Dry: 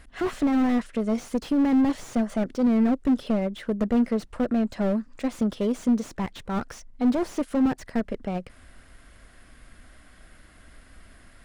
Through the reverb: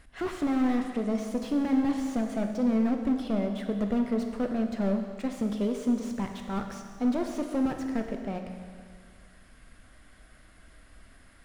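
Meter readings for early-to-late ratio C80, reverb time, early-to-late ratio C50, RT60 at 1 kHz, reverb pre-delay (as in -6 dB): 6.5 dB, 1.9 s, 5.5 dB, 1.9 s, 17 ms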